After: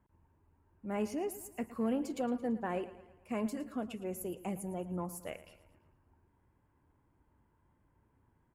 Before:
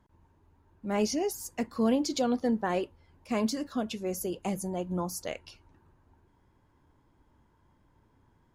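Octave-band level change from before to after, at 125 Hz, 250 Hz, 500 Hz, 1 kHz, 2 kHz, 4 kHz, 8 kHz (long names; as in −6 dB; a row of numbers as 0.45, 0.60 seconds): −5.5, −6.5, −6.5, −7.0, −7.0, −15.0, −10.5 decibels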